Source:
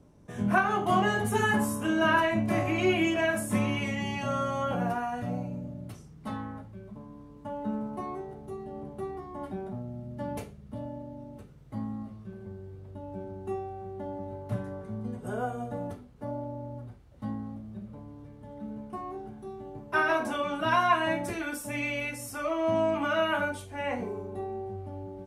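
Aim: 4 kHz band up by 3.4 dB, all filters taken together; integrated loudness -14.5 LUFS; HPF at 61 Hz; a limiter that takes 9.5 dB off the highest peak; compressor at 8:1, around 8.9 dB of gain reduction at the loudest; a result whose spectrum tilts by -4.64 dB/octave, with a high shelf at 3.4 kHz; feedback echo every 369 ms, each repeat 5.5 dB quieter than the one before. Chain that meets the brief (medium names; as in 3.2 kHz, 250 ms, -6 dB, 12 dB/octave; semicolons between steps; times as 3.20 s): high-pass 61 Hz; treble shelf 3.4 kHz -4 dB; peaking EQ 4 kHz +8.5 dB; compression 8:1, threshold -28 dBFS; peak limiter -28.5 dBFS; feedback delay 369 ms, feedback 53%, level -5.5 dB; trim +22.5 dB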